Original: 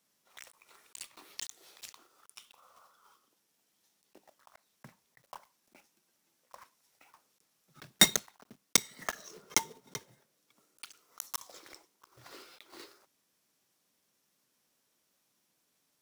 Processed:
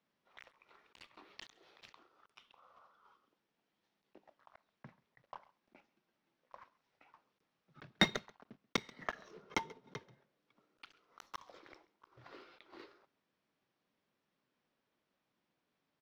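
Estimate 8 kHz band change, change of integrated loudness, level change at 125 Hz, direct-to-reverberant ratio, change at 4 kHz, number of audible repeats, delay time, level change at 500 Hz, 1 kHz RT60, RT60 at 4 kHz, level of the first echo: -22.5 dB, -8.5 dB, -1.0 dB, none, -9.5 dB, 1, 0.135 s, -2.0 dB, none, none, -22.5 dB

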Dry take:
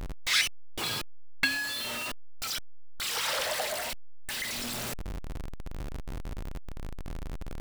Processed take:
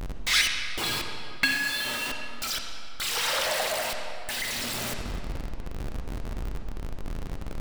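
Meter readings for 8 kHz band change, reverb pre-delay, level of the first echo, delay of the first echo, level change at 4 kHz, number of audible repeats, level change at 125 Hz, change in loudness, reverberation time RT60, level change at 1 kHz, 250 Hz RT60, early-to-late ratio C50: +3.0 dB, 39 ms, none, none, +3.5 dB, none, +3.5 dB, +3.0 dB, 2.7 s, +4.0 dB, 2.5 s, 4.0 dB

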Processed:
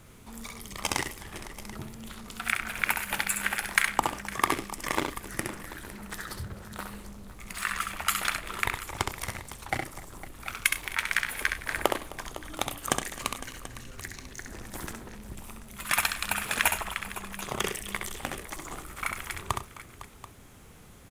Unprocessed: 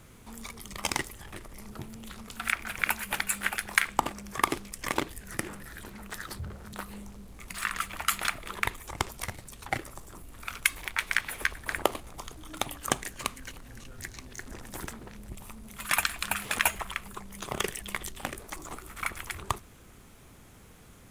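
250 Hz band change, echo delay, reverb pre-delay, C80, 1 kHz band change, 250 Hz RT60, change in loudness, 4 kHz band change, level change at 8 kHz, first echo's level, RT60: +1.5 dB, 66 ms, none, none, +1.5 dB, none, +1.0 dB, +1.5 dB, +1.5 dB, -5.5 dB, none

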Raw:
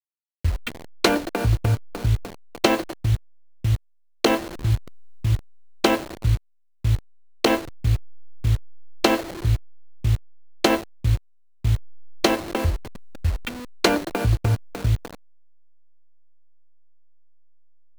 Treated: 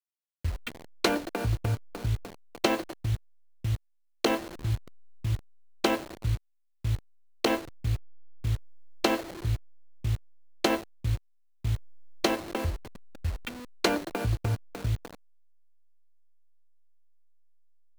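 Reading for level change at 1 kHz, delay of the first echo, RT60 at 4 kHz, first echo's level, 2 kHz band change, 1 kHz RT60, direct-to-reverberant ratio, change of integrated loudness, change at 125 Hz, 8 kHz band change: -6.5 dB, none, none, none, -6.5 dB, none, none, -7.0 dB, -8.0 dB, -6.5 dB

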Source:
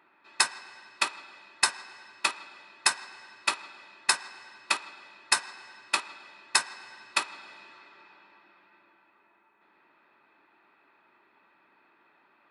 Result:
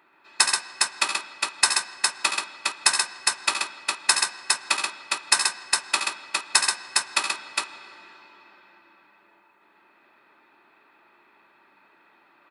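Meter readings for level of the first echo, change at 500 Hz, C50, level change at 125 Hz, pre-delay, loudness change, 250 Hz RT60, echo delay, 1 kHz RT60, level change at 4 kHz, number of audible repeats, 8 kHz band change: -10.0 dB, +5.0 dB, none, n/a, none, +5.5 dB, none, 71 ms, none, +7.5 dB, 3, +9.0 dB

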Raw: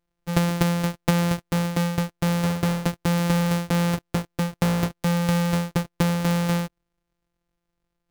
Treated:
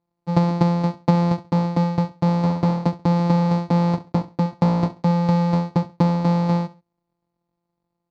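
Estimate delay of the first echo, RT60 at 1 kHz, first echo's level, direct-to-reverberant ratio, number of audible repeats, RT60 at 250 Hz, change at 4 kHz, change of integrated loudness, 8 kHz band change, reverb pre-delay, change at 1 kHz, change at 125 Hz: 67 ms, none, -17.0 dB, none, 2, none, -6.0 dB, +3.5 dB, under -10 dB, none, +5.5 dB, +3.5 dB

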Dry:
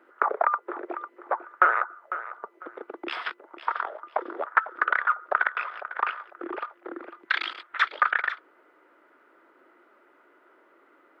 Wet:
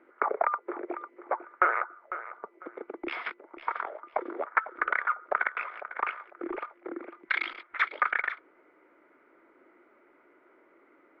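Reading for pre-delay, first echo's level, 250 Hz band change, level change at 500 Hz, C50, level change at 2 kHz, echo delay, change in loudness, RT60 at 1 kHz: none, none, +0.5 dB, -1.5 dB, none, -4.0 dB, none, -4.0 dB, none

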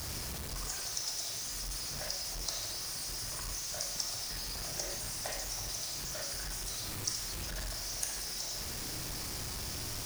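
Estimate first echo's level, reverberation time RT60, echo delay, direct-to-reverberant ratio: none, 0.85 s, none, 4.0 dB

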